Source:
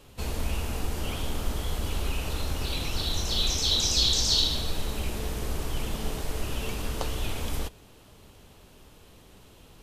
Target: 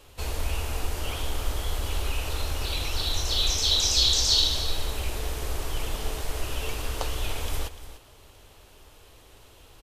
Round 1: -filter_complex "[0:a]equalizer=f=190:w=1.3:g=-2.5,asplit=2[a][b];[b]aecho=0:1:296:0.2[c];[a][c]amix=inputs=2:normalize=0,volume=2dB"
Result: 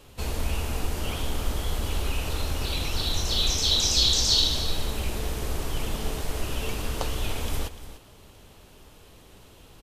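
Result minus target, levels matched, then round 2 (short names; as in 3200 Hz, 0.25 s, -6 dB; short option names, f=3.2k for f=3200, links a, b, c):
250 Hz band +5.5 dB
-filter_complex "[0:a]equalizer=f=190:w=1.3:g=-13,asplit=2[a][b];[b]aecho=0:1:296:0.2[c];[a][c]amix=inputs=2:normalize=0,volume=2dB"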